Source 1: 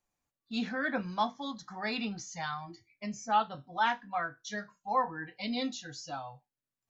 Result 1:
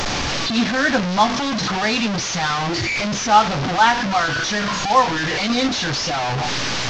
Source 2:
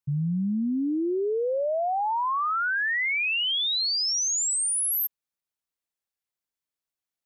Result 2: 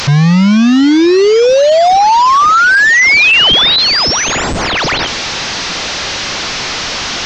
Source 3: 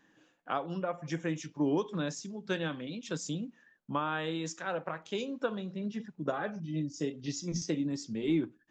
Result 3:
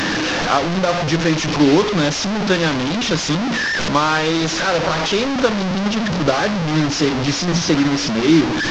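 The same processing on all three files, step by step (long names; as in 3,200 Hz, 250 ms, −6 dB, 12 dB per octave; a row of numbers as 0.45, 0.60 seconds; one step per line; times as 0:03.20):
linear delta modulator 32 kbit/s, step −29.5 dBFS
normalise the peak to −2 dBFS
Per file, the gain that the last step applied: +14.0, +18.5, +16.0 decibels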